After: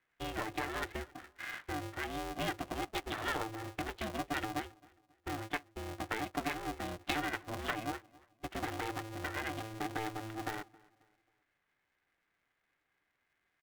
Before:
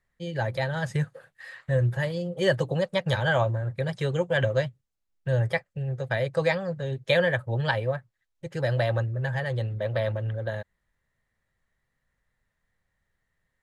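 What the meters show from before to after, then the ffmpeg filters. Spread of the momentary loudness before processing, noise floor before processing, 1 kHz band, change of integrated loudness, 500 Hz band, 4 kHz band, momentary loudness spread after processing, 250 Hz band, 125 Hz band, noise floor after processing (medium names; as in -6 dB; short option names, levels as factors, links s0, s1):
10 LU, -79 dBFS, -3.5 dB, -12.0 dB, -16.5 dB, -7.5 dB, 8 LU, -7.0 dB, -20.5 dB, -82 dBFS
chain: -filter_complex "[0:a]aresample=8000,aresample=44100,acompressor=threshold=0.0251:ratio=6,highpass=f=400:p=1,bandreject=f=610:w=12,asplit=2[s0][s1];[s1]adelay=269,lowpass=f=2400:p=1,volume=0.0668,asplit=2[s2][s3];[s3]adelay=269,lowpass=f=2400:p=1,volume=0.4,asplit=2[s4][s5];[s5]adelay=269,lowpass=f=2400:p=1,volume=0.4[s6];[s2][s4][s6]amix=inputs=3:normalize=0[s7];[s0][s7]amix=inputs=2:normalize=0,aeval=exprs='val(0)*sgn(sin(2*PI*220*n/s))':c=same,volume=1.12"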